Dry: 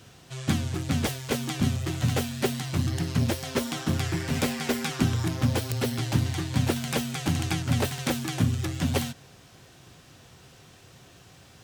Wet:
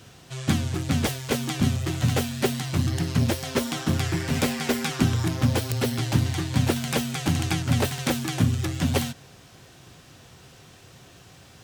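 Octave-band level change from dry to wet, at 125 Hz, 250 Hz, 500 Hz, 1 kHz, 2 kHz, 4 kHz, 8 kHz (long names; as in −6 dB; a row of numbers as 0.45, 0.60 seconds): +2.5, +2.5, +2.5, +2.5, +2.5, +2.5, +2.5 decibels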